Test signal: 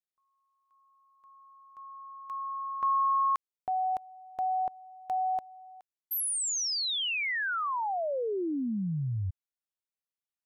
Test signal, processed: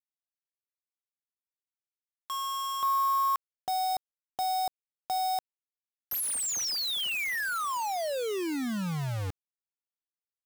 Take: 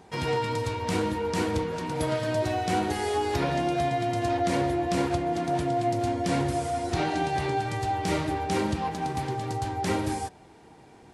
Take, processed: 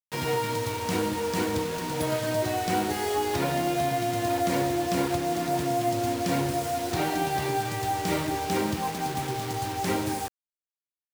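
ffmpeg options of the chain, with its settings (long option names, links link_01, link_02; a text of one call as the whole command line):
ffmpeg -i in.wav -af "highpass=100,acrusher=bits=5:mix=0:aa=0.000001" out.wav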